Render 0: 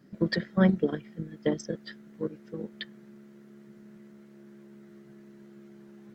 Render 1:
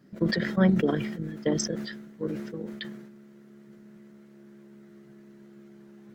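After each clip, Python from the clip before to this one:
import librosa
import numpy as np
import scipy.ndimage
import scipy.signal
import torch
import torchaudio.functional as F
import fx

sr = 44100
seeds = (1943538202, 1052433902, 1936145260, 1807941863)

y = fx.sustainer(x, sr, db_per_s=49.0)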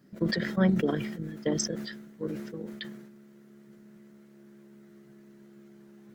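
y = fx.high_shelf(x, sr, hz=7000.0, db=6.5)
y = y * librosa.db_to_amplitude(-2.5)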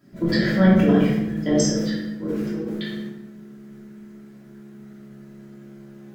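y = fx.room_shoebox(x, sr, seeds[0], volume_m3=360.0, walls='mixed', distance_m=2.9)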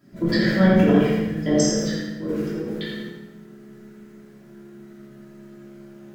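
y = fx.echo_feedback(x, sr, ms=83, feedback_pct=46, wet_db=-6.0)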